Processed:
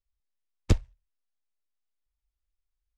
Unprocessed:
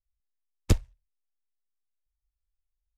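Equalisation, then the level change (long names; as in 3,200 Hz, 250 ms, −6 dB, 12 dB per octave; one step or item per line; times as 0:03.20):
high-frequency loss of the air 56 metres
0.0 dB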